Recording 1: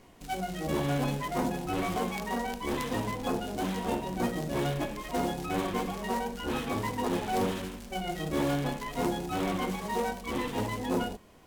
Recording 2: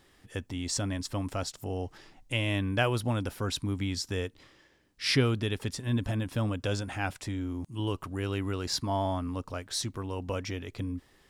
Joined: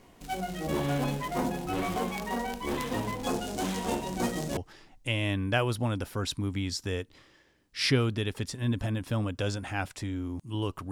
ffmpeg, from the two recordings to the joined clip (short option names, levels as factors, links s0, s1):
-filter_complex "[0:a]asettb=1/sr,asplit=3[s0][s1][s2];[s0]atrim=end=3.234[s3];[s1]atrim=start=3.23:end=4.57,asetpts=PTS-STARTPTS,afade=t=in:d=0.004:c=qsin,afade=t=out:st=1.336:d=0.004:c=qsin,equalizer=f=7000:w=0.71:g=7.5[s4];[s2]atrim=start=4.566[s5];[s3][s4]acrossfade=d=0.004:c1=hsin:c2=qsin[s6];[s6][s5]acrossfade=d=0.004:c1=qsin:c2=hsin,apad=whole_dur=10.91,atrim=end=10.91,atrim=end=4.572[s7];[1:a]atrim=start=1.818:end=8.16[s8];[s7][s8]acrossfade=d=0.004:c1=hsin:c2=hsin"